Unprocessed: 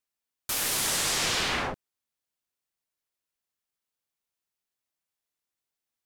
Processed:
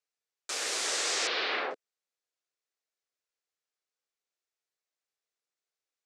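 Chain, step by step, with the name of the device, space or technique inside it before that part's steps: 1.27–1.71 s: steep low-pass 4.5 kHz 36 dB/octave; phone speaker on a table (cabinet simulation 350–7800 Hz, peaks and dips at 460 Hz +4 dB, 940 Hz -5 dB, 3.1 kHz -3 dB); trim -1.5 dB

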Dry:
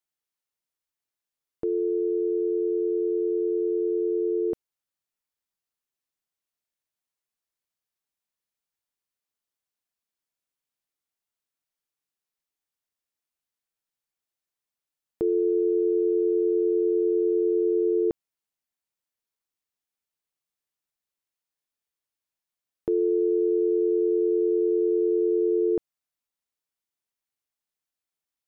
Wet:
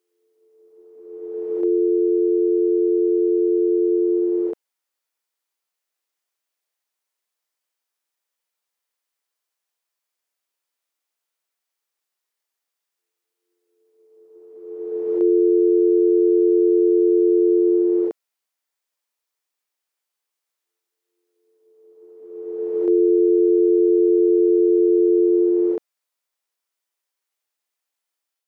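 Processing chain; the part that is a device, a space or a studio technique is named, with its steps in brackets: ghost voice (reverse; reverberation RT60 1.8 s, pre-delay 20 ms, DRR -3.5 dB; reverse; high-pass 400 Hz 12 dB/octave); trim +2.5 dB

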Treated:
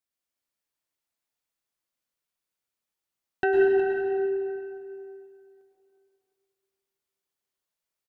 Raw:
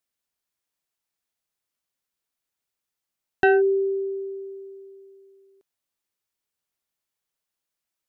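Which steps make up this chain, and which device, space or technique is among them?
3.44–4.13 s: low-pass 2.1 kHz 12 dB/octave; cave (delay 363 ms -10.5 dB; reverberation RT60 2.5 s, pre-delay 98 ms, DRR -2.5 dB); trim -6.5 dB

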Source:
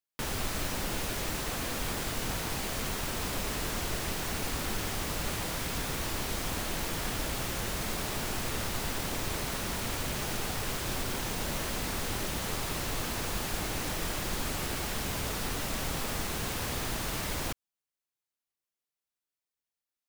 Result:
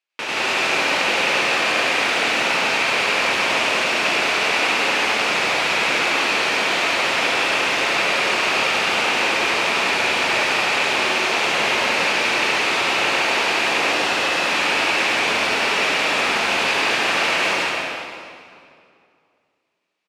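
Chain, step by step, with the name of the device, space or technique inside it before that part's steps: station announcement (band-pass 450–4500 Hz; peaking EQ 2.5 kHz +9.5 dB 0.41 oct; loudspeakers at several distances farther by 34 m -1 dB, 58 m -1 dB; reverberation RT60 2.3 s, pre-delay 83 ms, DRR -1.5 dB); 13.91–14.50 s: band-stop 2.3 kHz, Q 12; trim +9 dB

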